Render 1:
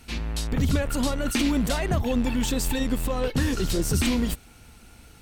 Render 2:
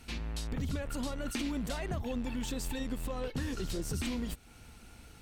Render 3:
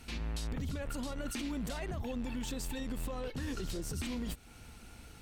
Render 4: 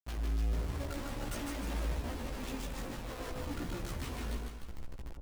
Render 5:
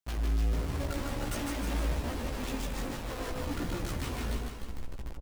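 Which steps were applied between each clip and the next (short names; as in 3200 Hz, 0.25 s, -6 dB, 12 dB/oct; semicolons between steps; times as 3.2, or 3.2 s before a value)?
high shelf 11000 Hz -4.5 dB; compressor 2:1, threshold -35 dBFS, peak gain reduction 9.5 dB; gain -3.5 dB
limiter -31 dBFS, peak gain reduction 7 dB; gain +1 dB
Schmitt trigger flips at -42.5 dBFS; split-band echo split 880 Hz, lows 0.109 s, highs 0.152 s, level -3 dB; chorus voices 4, 0.42 Hz, delay 16 ms, depth 2 ms
echo 0.317 s -12.5 dB; gain +4.5 dB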